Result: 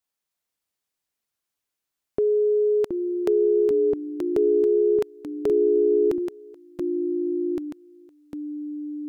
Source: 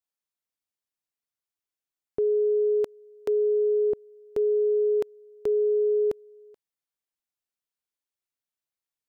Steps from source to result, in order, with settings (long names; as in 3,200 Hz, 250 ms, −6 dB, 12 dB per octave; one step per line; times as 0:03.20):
dynamic equaliser 530 Hz, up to −6 dB, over −40 dBFS, Q 1.8
delay with pitch and tempo change per echo 309 ms, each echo −3 semitones, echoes 2, each echo −6 dB
level +6 dB